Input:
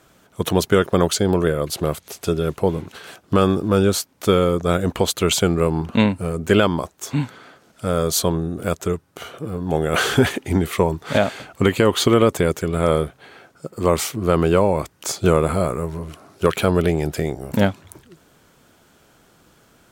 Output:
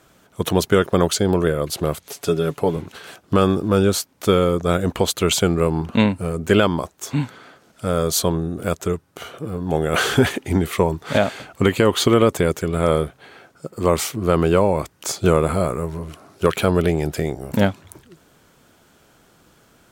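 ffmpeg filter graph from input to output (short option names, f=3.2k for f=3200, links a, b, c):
-filter_complex "[0:a]asettb=1/sr,asplit=3[a][b][c];[a]atrim=end=2.064[d];[b]atrim=start=2.06:end=2.76,asetpts=PTS-STARTPTS,afade=t=in:d=0.004:c=qsin,afade=t=out:st=0.696:d=0.004:c=qsin,lowshelf=f=81:g=-10.5,aecho=1:1:7:0.51,atrim=end_sample=30870[e];[c]atrim=start=2.756[f];[d][e]acrossfade=d=0.004:c1=hsin:c2=qsin[g];[g][f]acrossfade=d=0.004:c1=qsin:c2=hsin"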